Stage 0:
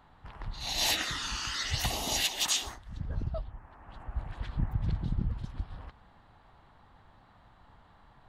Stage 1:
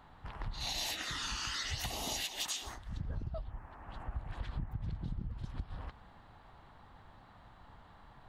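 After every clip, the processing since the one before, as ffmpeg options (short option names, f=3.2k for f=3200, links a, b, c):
-af "acompressor=threshold=-36dB:ratio=12,volume=1.5dB"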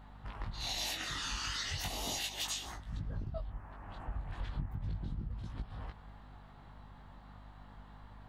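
-af "flanger=delay=18.5:depth=3.8:speed=0.36,aeval=exprs='val(0)+0.00158*(sin(2*PI*50*n/s)+sin(2*PI*2*50*n/s)/2+sin(2*PI*3*50*n/s)/3+sin(2*PI*4*50*n/s)/4+sin(2*PI*5*50*n/s)/5)':c=same,volume=3dB"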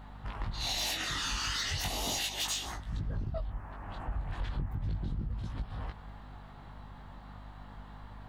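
-af "aeval=exprs='0.0668*sin(PI/2*1.78*val(0)/0.0668)':c=same,volume=-3.5dB"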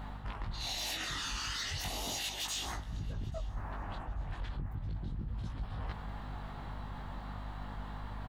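-filter_complex "[0:a]areverse,acompressor=threshold=-42dB:ratio=6,areverse,asplit=2[a][b];[b]adelay=837,lowpass=f=4.2k:p=1,volume=-20dB,asplit=2[c][d];[d]adelay=837,lowpass=f=4.2k:p=1,volume=0.3[e];[a][c][e]amix=inputs=3:normalize=0,volume=6dB"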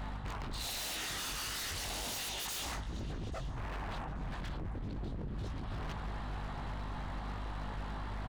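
-af "aresample=22050,aresample=44100,aeval=exprs='0.0126*(abs(mod(val(0)/0.0126+3,4)-2)-1)':c=same,volume=3.5dB"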